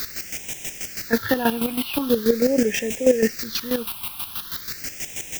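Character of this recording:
a quantiser's noise floor 6 bits, dither triangular
phaser sweep stages 6, 0.43 Hz, lowest notch 480–1,200 Hz
chopped level 6.2 Hz, depth 65%, duty 30%

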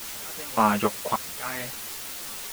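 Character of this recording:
sample-and-hold tremolo, depth 95%
a quantiser's noise floor 6 bits, dither triangular
a shimmering, thickened sound

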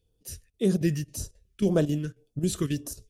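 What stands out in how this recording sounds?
chopped level 3.7 Hz, depth 65%, duty 85%
phaser sweep stages 2, 1.8 Hz, lowest notch 720–2,000 Hz

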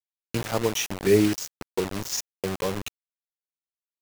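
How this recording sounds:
chopped level 0.94 Hz, depth 60%, duty 25%
a quantiser's noise floor 6 bits, dither none

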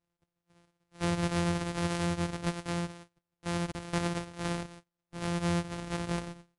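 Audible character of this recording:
a buzz of ramps at a fixed pitch in blocks of 256 samples
MP3

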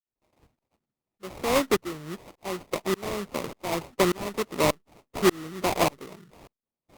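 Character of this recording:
aliases and images of a low sample rate 1,600 Hz, jitter 20%
tremolo saw up 1.7 Hz, depth 100%
Opus

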